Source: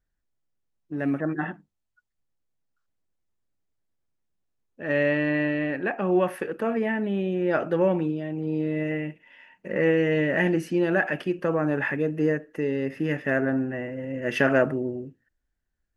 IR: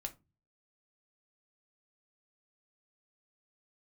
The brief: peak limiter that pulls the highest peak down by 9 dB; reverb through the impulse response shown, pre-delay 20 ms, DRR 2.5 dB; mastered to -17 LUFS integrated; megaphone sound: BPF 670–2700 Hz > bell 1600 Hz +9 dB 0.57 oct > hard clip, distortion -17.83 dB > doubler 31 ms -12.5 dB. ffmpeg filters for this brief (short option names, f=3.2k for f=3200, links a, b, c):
-filter_complex "[0:a]alimiter=limit=-16.5dB:level=0:latency=1,asplit=2[a][b];[1:a]atrim=start_sample=2205,adelay=20[c];[b][c]afir=irnorm=-1:irlink=0,volume=0dB[d];[a][d]amix=inputs=2:normalize=0,highpass=670,lowpass=2.7k,equalizer=f=1.6k:t=o:w=0.57:g=9,asoftclip=type=hard:threshold=-17dB,asplit=2[e][f];[f]adelay=31,volume=-12.5dB[g];[e][g]amix=inputs=2:normalize=0,volume=10.5dB"